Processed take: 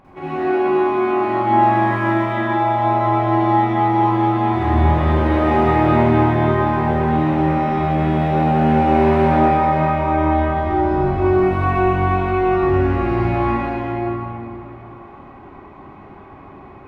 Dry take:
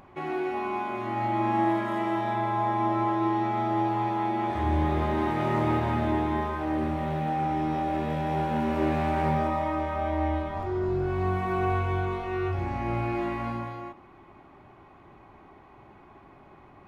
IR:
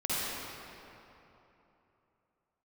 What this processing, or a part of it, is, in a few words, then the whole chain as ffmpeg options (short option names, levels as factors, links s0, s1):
swimming-pool hall: -filter_complex "[1:a]atrim=start_sample=2205[s0];[0:a][s0]afir=irnorm=-1:irlink=0,highshelf=f=4600:g=-8,volume=1.33"